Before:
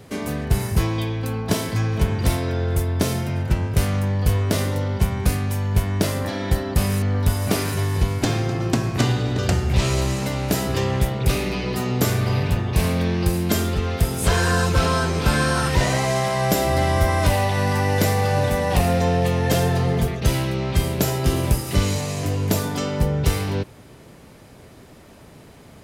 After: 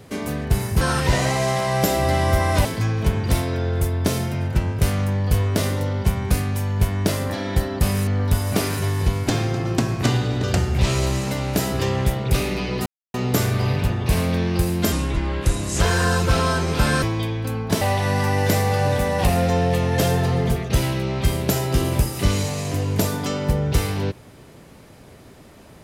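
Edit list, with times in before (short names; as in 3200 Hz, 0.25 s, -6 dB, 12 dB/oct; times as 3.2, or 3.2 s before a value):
0.81–1.6 swap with 15.49–17.33
11.81 insert silence 0.28 s
13.59–14.27 speed 77%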